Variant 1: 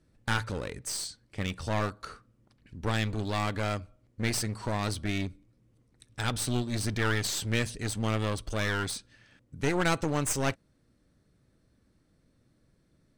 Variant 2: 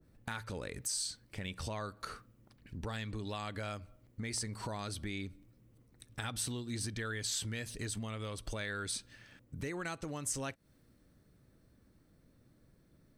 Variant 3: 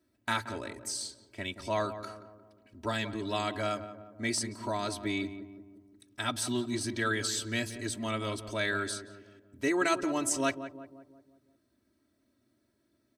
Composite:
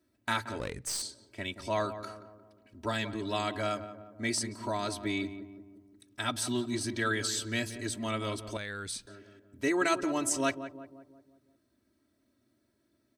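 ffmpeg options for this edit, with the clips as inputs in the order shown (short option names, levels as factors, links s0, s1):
-filter_complex "[2:a]asplit=3[s0][s1][s2];[s0]atrim=end=0.602[s3];[0:a]atrim=start=0.598:end=1.022[s4];[s1]atrim=start=1.018:end=8.572[s5];[1:a]atrim=start=8.568:end=9.072[s6];[s2]atrim=start=9.068[s7];[s3][s4]acrossfade=d=0.004:c1=hsin:c2=hsin[s8];[s8][s5]acrossfade=d=0.004:c1=hsin:c2=hsin[s9];[s9][s6]acrossfade=d=0.004:c1=hsin:c2=hsin[s10];[s10][s7]acrossfade=d=0.004:c1=hsin:c2=hsin"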